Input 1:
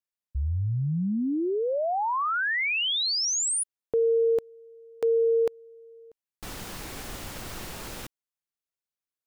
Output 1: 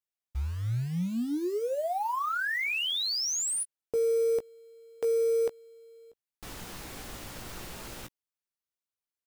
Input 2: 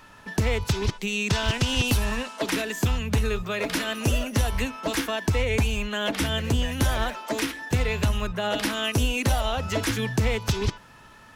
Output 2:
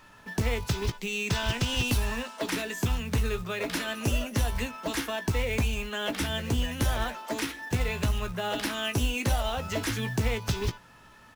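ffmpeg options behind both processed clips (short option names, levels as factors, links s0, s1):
-filter_complex "[0:a]acrusher=bits=5:mode=log:mix=0:aa=0.000001,asplit=2[s0][s1];[s1]adelay=17,volume=0.335[s2];[s0][s2]amix=inputs=2:normalize=0,volume=0.596"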